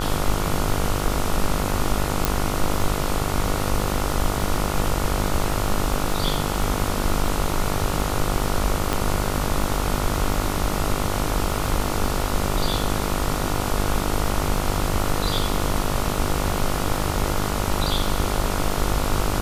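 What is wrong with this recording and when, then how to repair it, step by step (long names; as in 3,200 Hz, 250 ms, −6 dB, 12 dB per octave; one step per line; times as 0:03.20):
mains buzz 50 Hz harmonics 29 −27 dBFS
surface crackle 56 per second −30 dBFS
0:02.25: click
0:08.93: click −6 dBFS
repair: click removal
hum removal 50 Hz, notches 29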